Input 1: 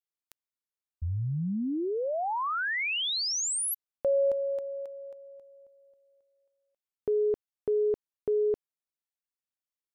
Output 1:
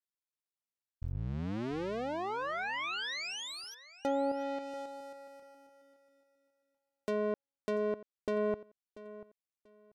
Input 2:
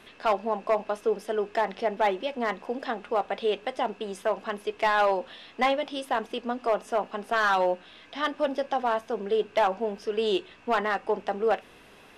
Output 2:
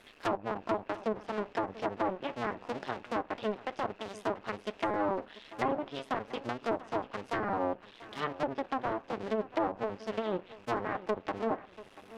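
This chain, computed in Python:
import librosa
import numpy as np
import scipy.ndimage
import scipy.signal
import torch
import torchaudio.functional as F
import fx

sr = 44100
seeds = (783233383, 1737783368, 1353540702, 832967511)

y = fx.cycle_switch(x, sr, every=2, mode='muted')
y = fx.env_lowpass_down(y, sr, base_hz=1000.0, full_db=-23.5)
y = fx.echo_feedback(y, sr, ms=688, feedback_pct=23, wet_db=-17.0)
y = F.gain(torch.from_numpy(y), -3.0).numpy()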